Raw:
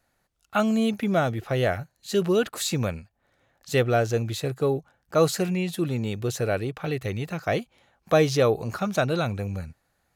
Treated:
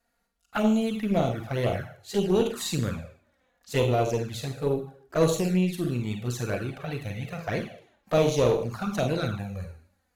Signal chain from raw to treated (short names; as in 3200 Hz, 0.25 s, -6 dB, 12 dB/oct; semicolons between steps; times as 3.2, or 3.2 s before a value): Schroeder reverb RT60 0.55 s, combs from 33 ms, DRR 3.5 dB; envelope flanger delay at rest 4.3 ms, full sweep at -17.5 dBFS; added harmonics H 4 -18 dB, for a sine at -8.5 dBFS; gain -2 dB